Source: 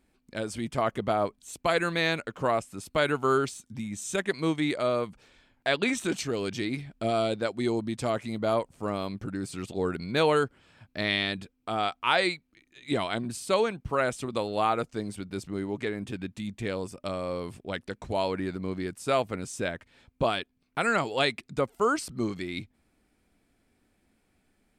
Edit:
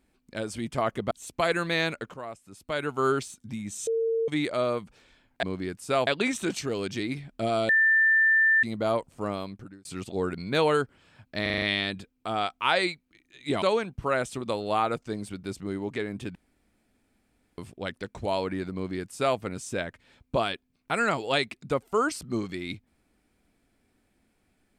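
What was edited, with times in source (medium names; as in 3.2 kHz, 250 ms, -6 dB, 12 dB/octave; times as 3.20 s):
1.11–1.37 s: delete
2.40–3.36 s: fade in quadratic, from -13 dB
4.13–4.54 s: bleep 454 Hz -23 dBFS
7.31–8.25 s: bleep 1.78 kHz -17.5 dBFS
8.92–9.47 s: fade out
11.04 s: stutter 0.04 s, 6 plays
13.04–13.49 s: delete
16.22–17.45 s: room tone
18.61–19.25 s: copy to 5.69 s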